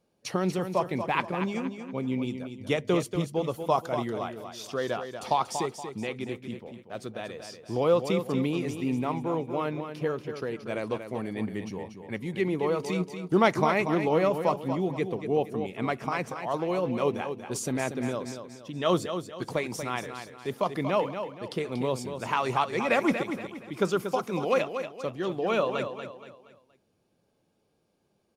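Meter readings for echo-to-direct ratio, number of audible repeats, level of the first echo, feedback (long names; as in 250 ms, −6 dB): −8.0 dB, 4, −8.5 dB, 38%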